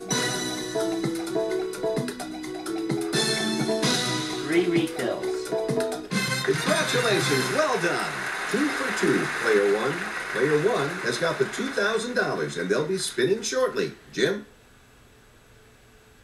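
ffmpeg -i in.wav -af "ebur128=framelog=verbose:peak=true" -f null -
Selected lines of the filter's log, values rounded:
Integrated loudness:
  I:         -25.2 LUFS
  Threshold: -35.6 LUFS
Loudness range:
  LRA:         3.8 LU
  Threshold: -45.1 LUFS
  LRA low:   -27.5 LUFS
  LRA high:  -23.7 LUFS
True peak:
  Peak:       -9.2 dBFS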